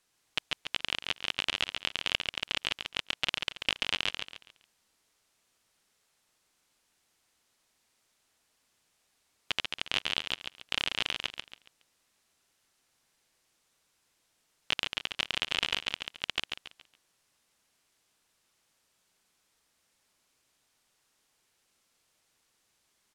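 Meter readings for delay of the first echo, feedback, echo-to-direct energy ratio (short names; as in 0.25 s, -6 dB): 0.139 s, 32%, -4.5 dB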